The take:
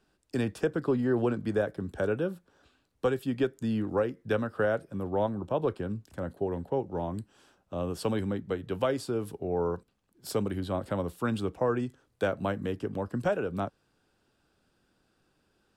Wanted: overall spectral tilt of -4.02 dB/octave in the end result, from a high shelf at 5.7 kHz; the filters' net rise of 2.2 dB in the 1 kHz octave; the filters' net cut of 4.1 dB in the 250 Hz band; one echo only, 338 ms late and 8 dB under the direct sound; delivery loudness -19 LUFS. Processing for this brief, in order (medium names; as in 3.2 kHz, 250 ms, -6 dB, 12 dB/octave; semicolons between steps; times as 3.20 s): peaking EQ 250 Hz -5.5 dB; peaking EQ 1 kHz +3.5 dB; treble shelf 5.7 kHz -8 dB; delay 338 ms -8 dB; trim +13 dB